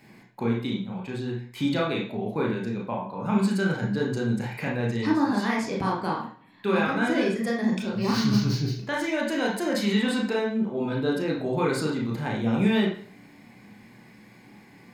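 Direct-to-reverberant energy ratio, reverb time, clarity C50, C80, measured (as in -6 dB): -2.5 dB, 0.50 s, 5.0 dB, 9.0 dB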